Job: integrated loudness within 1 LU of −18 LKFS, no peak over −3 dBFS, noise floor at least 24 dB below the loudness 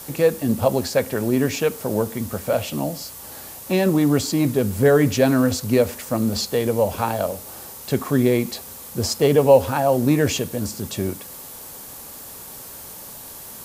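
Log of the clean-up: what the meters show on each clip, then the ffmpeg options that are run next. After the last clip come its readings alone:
background noise floor −38 dBFS; target noise floor −45 dBFS; integrated loudness −20.5 LKFS; sample peak −2.0 dBFS; target loudness −18.0 LKFS
→ -af "afftdn=noise_reduction=7:noise_floor=-38"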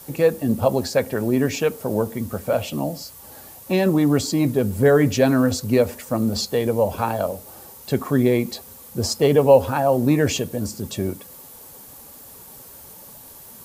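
background noise floor −43 dBFS; target noise floor −45 dBFS
→ -af "afftdn=noise_reduction=6:noise_floor=-43"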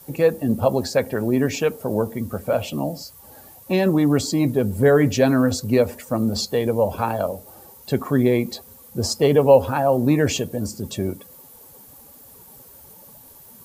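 background noise floor −47 dBFS; integrated loudness −20.5 LKFS; sample peak −2.0 dBFS; target loudness −18.0 LKFS
→ -af "volume=2.5dB,alimiter=limit=-3dB:level=0:latency=1"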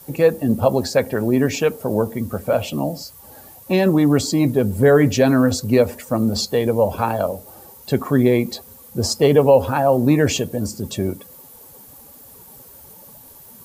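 integrated loudness −18.5 LKFS; sample peak −3.0 dBFS; background noise floor −44 dBFS

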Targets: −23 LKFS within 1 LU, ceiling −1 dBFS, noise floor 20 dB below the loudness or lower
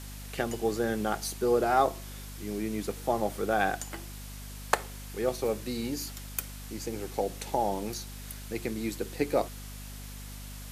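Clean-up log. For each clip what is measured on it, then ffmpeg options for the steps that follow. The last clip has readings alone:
mains hum 50 Hz; hum harmonics up to 250 Hz; level of the hum −41 dBFS; background noise floor −42 dBFS; target noise floor −52 dBFS; integrated loudness −31.5 LKFS; sample peak −4.5 dBFS; target loudness −23.0 LKFS
→ -af "bandreject=frequency=50:width_type=h:width=4,bandreject=frequency=100:width_type=h:width=4,bandreject=frequency=150:width_type=h:width=4,bandreject=frequency=200:width_type=h:width=4,bandreject=frequency=250:width_type=h:width=4"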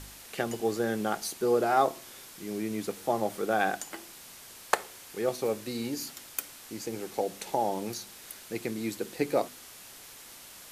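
mains hum none found; background noise floor −49 dBFS; target noise floor −52 dBFS
→ -af "afftdn=noise_reduction=6:noise_floor=-49"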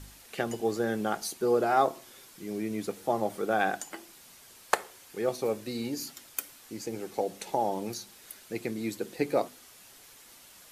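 background noise floor −54 dBFS; integrated loudness −31.5 LKFS; sample peak −4.5 dBFS; target loudness −23.0 LKFS
→ -af "volume=8.5dB,alimiter=limit=-1dB:level=0:latency=1"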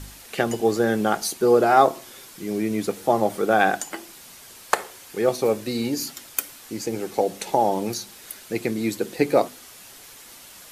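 integrated loudness −23.0 LKFS; sample peak −1.0 dBFS; background noise floor −45 dBFS

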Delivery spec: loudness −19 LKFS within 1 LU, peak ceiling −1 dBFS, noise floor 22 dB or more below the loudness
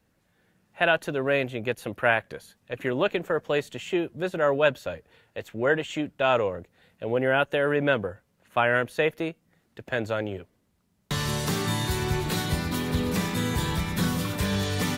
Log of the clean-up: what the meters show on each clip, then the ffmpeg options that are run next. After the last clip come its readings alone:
integrated loudness −26.5 LKFS; sample peak −6.0 dBFS; target loudness −19.0 LKFS
→ -af "volume=7.5dB,alimiter=limit=-1dB:level=0:latency=1"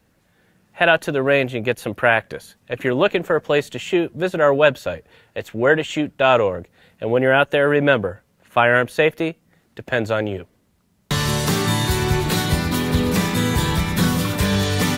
integrated loudness −19.0 LKFS; sample peak −1.0 dBFS; background noise floor −62 dBFS

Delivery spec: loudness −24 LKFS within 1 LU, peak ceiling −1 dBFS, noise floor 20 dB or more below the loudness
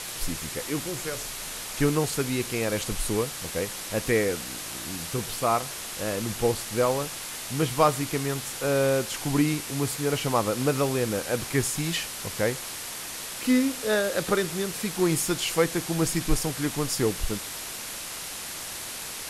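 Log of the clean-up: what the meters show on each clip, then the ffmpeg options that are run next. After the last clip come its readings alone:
background noise floor −37 dBFS; target noise floor −48 dBFS; integrated loudness −27.5 LKFS; sample peak −6.5 dBFS; target loudness −24.0 LKFS
→ -af "afftdn=noise_reduction=11:noise_floor=-37"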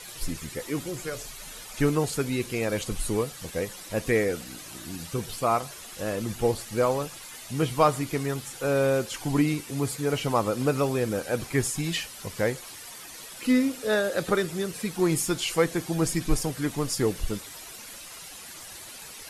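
background noise floor −43 dBFS; target noise floor −48 dBFS
→ -af "afftdn=noise_reduction=6:noise_floor=-43"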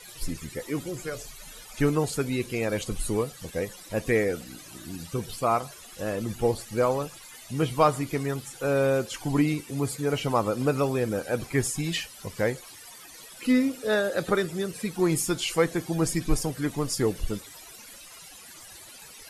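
background noise floor −47 dBFS; target noise floor −48 dBFS
→ -af "afftdn=noise_reduction=6:noise_floor=-47"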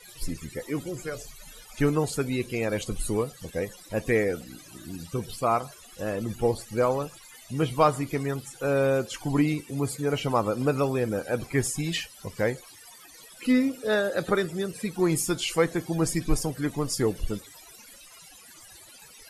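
background noise floor −50 dBFS; integrated loudness −28.0 LKFS; sample peak −7.0 dBFS; target loudness −24.0 LKFS
→ -af "volume=4dB"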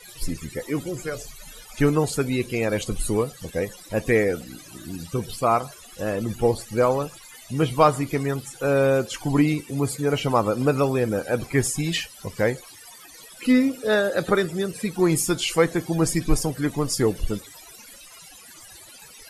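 integrated loudness −24.0 LKFS; sample peak −3.0 dBFS; background noise floor −46 dBFS

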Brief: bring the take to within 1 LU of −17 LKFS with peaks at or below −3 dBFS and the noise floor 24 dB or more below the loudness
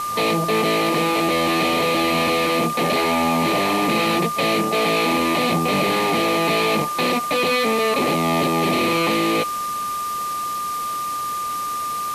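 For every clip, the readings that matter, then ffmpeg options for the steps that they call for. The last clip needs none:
interfering tone 1,200 Hz; level of the tone −23 dBFS; background noise floor −26 dBFS; target noise floor −44 dBFS; integrated loudness −19.5 LKFS; sample peak −7.5 dBFS; target loudness −17.0 LKFS
→ -af "bandreject=frequency=1200:width=30"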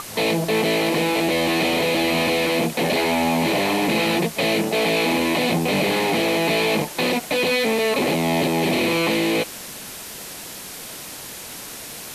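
interfering tone none found; background noise floor −36 dBFS; target noise floor −44 dBFS
→ -af "afftdn=noise_reduction=8:noise_floor=-36"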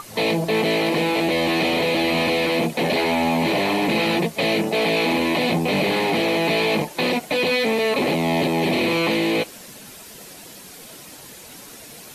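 background noise floor −41 dBFS; target noise floor −44 dBFS
→ -af "afftdn=noise_reduction=6:noise_floor=-41"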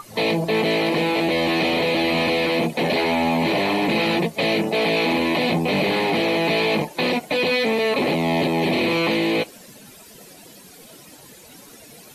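background noise floor −45 dBFS; integrated loudness −20.5 LKFS; sample peak −9.0 dBFS; target loudness −17.0 LKFS
→ -af "volume=3.5dB"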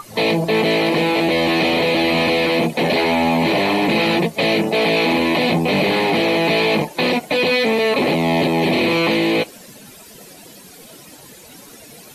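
integrated loudness −17.0 LKFS; sample peak −5.5 dBFS; background noise floor −42 dBFS

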